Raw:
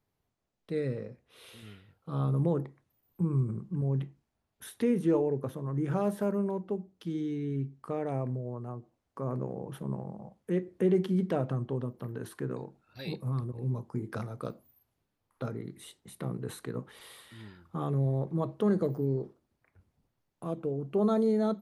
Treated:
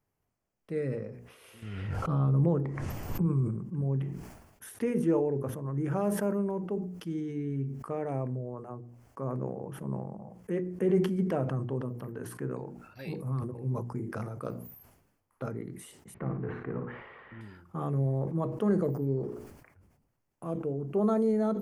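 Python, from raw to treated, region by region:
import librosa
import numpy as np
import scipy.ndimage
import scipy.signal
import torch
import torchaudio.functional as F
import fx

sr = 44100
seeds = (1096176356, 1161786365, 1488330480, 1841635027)

y = fx.chain(x, sr, fx.lowpass(hz=7300.0, slope=12),
    fx.low_shelf(hz=110.0, db=8.5),
    fx.pre_swell(db_per_s=27.0), at=(1.62, 3.26))
y = fx.chain(y, sr, fx.law_mismatch(coded='mu'),
    fx.lowpass(hz=2200.0, slope=24),
    fx.room_flutter(wall_m=9.9, rt60_s=0.39), at=(16.14, 17.41))
y = fx.peak_eq(y, sr, hz=3800.0, db=-13.0, octaves=0.41)
y = fx.hum_notches(y, sr, base_hz=60, count=8)
y = fx.sustainer(y, sr, db_per_s=59.0)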